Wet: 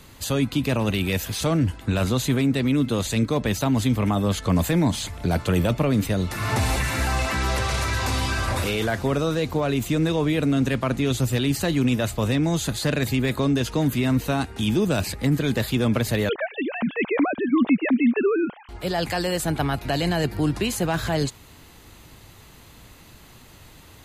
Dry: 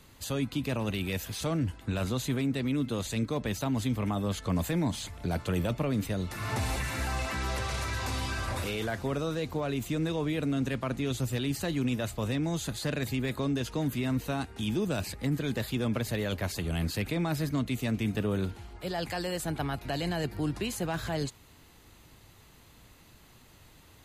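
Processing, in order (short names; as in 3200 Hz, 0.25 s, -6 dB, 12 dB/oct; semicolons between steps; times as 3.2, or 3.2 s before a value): 16.29–18.69 sine-wave speech; gain +8.5 dB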